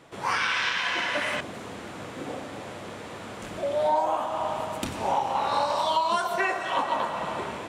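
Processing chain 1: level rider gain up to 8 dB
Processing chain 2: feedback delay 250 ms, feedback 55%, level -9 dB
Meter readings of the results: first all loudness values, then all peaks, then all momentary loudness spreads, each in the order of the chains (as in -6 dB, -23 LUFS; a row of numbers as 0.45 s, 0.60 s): -20.0 LUFS, -27.0 LUFS; -5.5 dBFS, -12.5 dBFS; 14 LU, 13 LU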